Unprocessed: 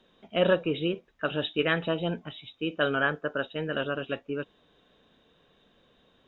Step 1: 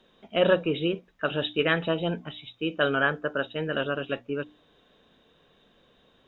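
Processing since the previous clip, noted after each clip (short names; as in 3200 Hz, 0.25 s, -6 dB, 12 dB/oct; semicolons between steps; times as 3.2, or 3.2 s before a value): notches 60/120/180/240/300 Hz; gain +2 dB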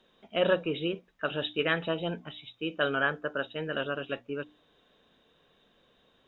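low shelf 410 Hz -3 dB; gain -3 dB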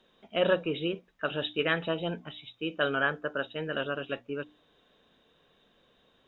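nothing audible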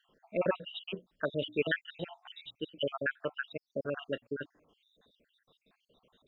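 random spectral dropouts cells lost 71%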